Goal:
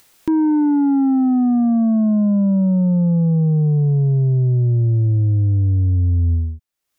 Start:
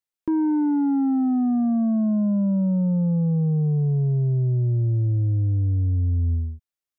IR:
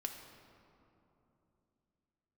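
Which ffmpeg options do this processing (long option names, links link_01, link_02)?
-af "acompressor=mode=upward:threshold=-35dB:ratio=2.5,volume=5.5dB"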